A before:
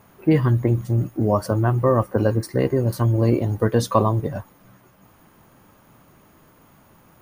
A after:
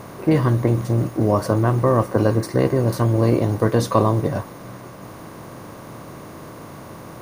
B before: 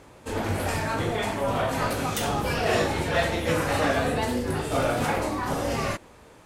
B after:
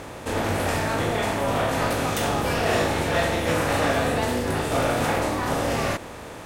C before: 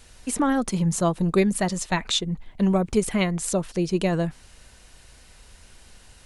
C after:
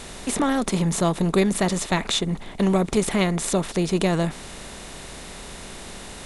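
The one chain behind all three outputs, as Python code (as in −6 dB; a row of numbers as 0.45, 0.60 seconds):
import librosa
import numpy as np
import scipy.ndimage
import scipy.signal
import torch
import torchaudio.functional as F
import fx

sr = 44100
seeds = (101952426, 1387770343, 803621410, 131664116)

y = fx.bin_compress(x, sr, power=0.6)
y = F.gain(torch.from_numpy(y), -1.5).numpy()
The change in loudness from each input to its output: +1.5, +2.5, +1.5 LU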